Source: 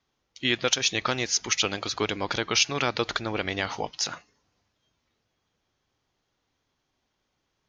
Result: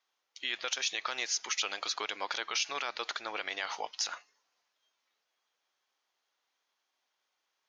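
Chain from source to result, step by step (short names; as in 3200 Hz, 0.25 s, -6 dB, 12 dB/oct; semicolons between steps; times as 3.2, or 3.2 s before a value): HPF 750 Hz 12 dB/oct; limiter -18 dBFS, peak gain reduction 9.5 dB; gain -2.5 dB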